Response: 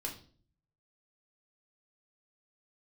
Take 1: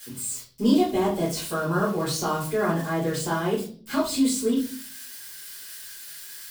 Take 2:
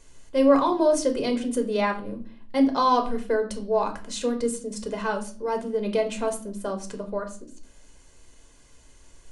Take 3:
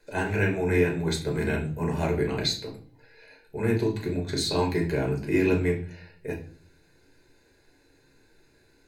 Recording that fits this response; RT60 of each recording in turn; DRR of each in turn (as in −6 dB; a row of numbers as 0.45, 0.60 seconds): 3; 0.45, 0.45, 0.45 seconds; −9.5, 4.0, −0.5 decibels